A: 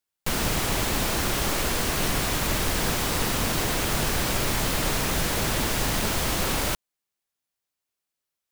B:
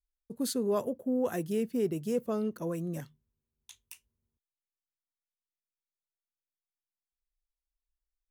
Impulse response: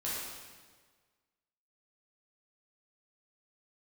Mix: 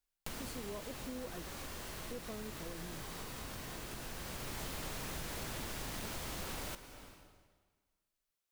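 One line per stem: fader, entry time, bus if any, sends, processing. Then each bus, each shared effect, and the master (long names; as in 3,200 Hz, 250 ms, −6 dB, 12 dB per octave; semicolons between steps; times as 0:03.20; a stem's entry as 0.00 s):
−5.0 dB, 0.00 s, send −14 dB, automatic ducking −18 dB, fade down 1.10 s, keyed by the second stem
−5.5 dB, 0.00 s, muted 0:01.43–0:02.11, no send, no processing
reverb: on, RT60 1.5 s, pre-delay 8 ms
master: downward compressor 3 to 1, threshold −44 dBFS, peak gain reduction 14 dB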